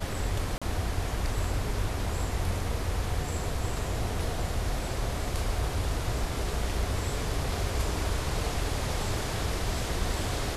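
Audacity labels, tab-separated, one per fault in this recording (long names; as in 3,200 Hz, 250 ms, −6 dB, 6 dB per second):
0.580000	0.620000	drop-out 36 ms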